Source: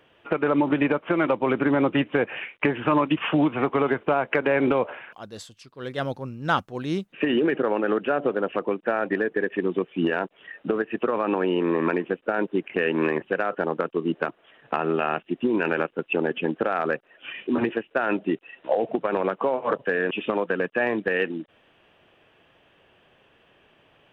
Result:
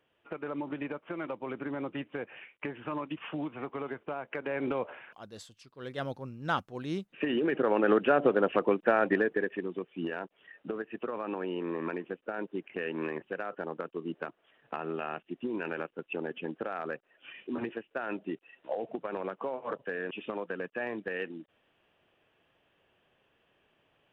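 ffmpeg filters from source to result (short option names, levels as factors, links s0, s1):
-af "volume=0.944,afade=t=in:st=4.31:d=0.81:silence=0.421697,afade=t=in:st=7.43:d=0.48:silence=0.446684,afade=t=out:st=9.02:d=0.65:silence=0.281838"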